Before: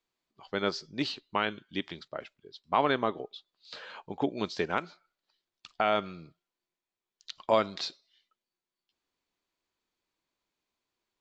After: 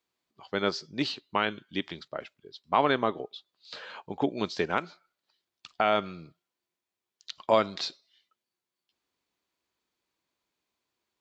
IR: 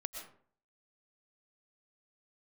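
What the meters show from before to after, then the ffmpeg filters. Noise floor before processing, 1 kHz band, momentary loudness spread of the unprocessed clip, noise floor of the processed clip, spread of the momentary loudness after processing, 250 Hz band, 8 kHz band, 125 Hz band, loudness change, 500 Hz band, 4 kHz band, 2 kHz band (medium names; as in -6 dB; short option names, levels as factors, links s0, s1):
under -85 dBFS, +2.0 dB, 18 LU, under -85 dBFS, 18 LU, +2.0 dB, no reading, +2.0 dB, +2.0 dB, +2.0 dB, +2.0 dB, +2.0 dB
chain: -af "highpass=53,volume=1.26"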